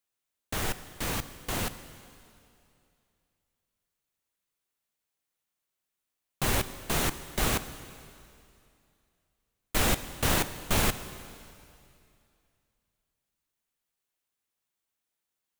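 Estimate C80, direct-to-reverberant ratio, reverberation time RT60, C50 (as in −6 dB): 13.5 dB, 11.5 dB, 2.5 s, 13.0 dB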